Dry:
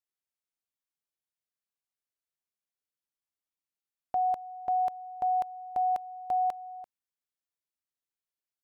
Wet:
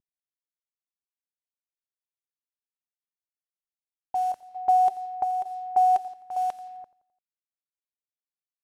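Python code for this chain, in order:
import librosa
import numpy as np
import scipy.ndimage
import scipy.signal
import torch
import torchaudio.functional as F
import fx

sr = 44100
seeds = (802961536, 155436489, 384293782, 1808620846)

p1 = fx.cvsd(x, sr, bps=64000)
p2 = fx.env_lowpass(p1, sr, base_hz=420.0, full_db=-29.0)
p3 = fx.chopper(p2, sr, hz=1.1, depth_pct=60, duty_pct=75)
p4 = fx.small_body(p3, sr, hz=(390.0, 760.0), ring_ms=85, db=12, at=(4.55, 6.08))
p5 = p4 + fx.echo_feedback(p4, sr, ms=86, feedback_pct=52, wet_db=-20, dry=0)
y = p5 * 10.0 ** (2.0 / 20.0)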